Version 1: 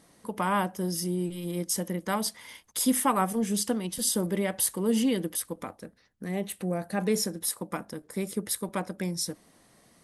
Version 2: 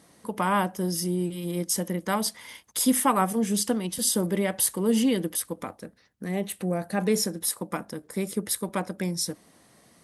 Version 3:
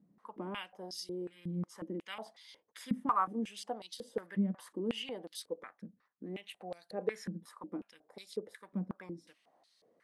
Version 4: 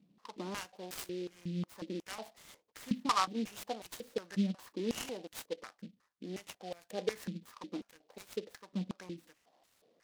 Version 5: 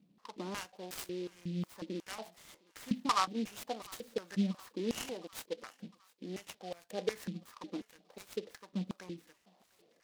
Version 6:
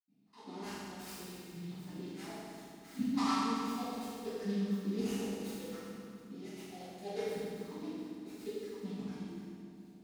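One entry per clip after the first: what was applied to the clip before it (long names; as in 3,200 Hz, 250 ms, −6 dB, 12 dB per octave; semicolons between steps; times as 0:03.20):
high-pass filter 53 Hz; level +2.5 dB
band-pass on a step sequencer 5.5 Hz 200–4,200 Hz; level −1.5 dB
short delay modulated by noise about 3,200 Hz, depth 0.062 ms
feedback echo with a high-pass in the loop 708 ms, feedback 63%, high-pass 600 Hz, level −23 dB
convolution reverb RT60 2.4 s, pre-delay 77 ms; level +18 dB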